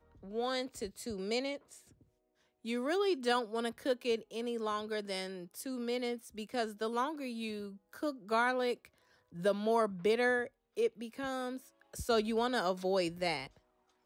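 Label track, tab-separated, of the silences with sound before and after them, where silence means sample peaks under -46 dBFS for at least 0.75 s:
1.780000	2.650000	silence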